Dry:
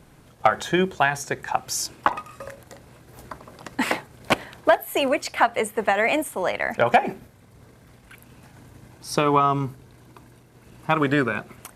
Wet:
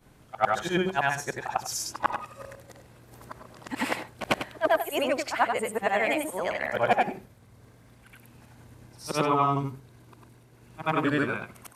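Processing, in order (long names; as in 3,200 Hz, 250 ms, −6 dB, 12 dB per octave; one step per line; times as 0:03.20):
every overlapping window played backwards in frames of 201 ms
level −1.5 dB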